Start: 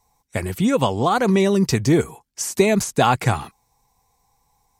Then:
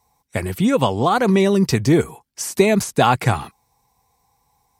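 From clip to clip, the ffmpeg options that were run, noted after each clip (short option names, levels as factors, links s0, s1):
-af "highpass=52,equalizer=f=6800:t=o:w=0.48:g=-4,volume=1.19"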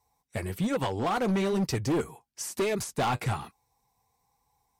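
-af "flanger=delay=2.2:depth=7:regen=-52:speed=1.1:shape=sinusoidal,asoftclip=type=hard:threshold=0.126,volume=0.562"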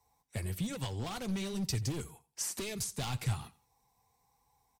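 -filter_complex "[0:a]acrossover=split=150|3000[s0][s1][s2];[s1]acompressor=threshold=0.00501:ratio=3[s3];[s0][s3][s2]amix=inputs=3:normalize=0,aecho=1:1:86|172:0.1|0.027"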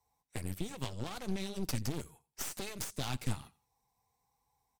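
-af "aeval=exprs='0.0841*(cos(1*acos(clip(val(0)/0.0841,-1,1)))-cos(1*PI/2))+0.0422*(cos(4*acos(clip(val(0)/0.0841,-1,1)))-cos(4*PI/2))':c=same,volume=0.501"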